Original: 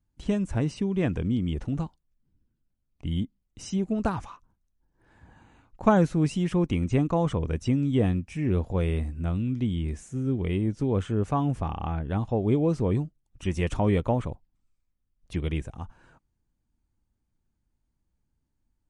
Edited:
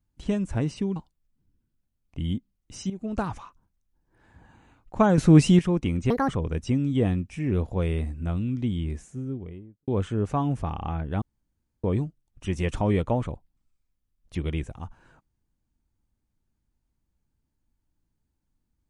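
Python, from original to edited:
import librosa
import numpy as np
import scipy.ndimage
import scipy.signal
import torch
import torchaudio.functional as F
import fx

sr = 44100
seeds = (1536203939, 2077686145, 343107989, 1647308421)

y = fx.studio_fade_out(x, sr, start_s=9.77, length_s=1.09)
y = fx.edit(y, sr, fx.cut(start_s=0.96, length_s=0.87),
    fx.fade_in_from(start_s=3.77, length_s=0.37, floor_db=-12.0),
    fx.clip_gain(start_s=6.05, length_s=0.41, db=9.5),
    fx.speed_span(start_s=6.97, length_s=0.3, speed=1.61),
    fx.room_tone_fill(start_s=12.2, length_s=0.62), tone=tone)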